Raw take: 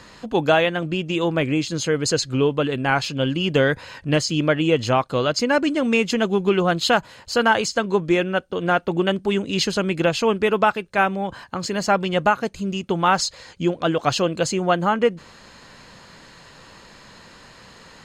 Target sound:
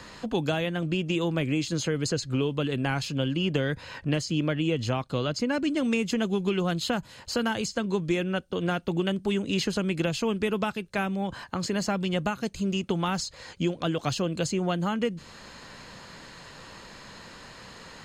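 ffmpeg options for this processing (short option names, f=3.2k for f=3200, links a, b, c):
-filter_complex "[0:a]asettb=1/sr,asplit=3[a][b][c];[a]atrim=end=3.284[d];[b]atrim=start=3.28:end=5.77,asetpts=PTS-STARTPTS,afade=t=in:d=0.004:c=qsin,afade=t=out:st=2.486:d=0.004:c=qsin,highshelf=f=4.7k:g=-6.5[e];[c]atrim=start=5.766[f];[d][e]acrossfade=d=0.004:c1=hsin:c2=qsin[g];[g][f]acrossfade=d=0.004:c1=qsin:c2=hsin,acrossover=split=280|2700|7300[h][i][j][k];[h]acompressor=threshold=-27dB:ratio=4[l];[i]acompressor=threshold=-31dB:ratio=4[m];[j]acompressor=threshold=-37dB:ratio=4[n];[k]acompressor=threshold=-42dB:ratio=4[o];[l][m][n][o]amix=inputs=4:normalize=0"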